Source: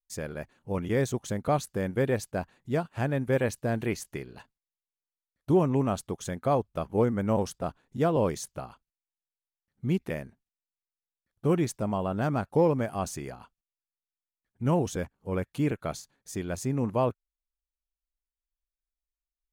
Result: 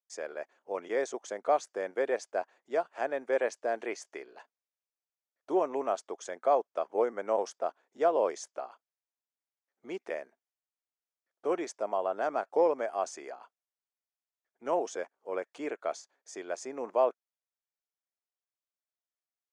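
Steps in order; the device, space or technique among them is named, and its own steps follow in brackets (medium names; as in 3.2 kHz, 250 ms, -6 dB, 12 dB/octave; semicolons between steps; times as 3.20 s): phone speaker on a table (cabinet simulation 390–7000 Hz, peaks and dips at 670 Hz +5 dB, 2.8 kHz -5 dB, 4 kHz -8 dB); trim -1.5 dB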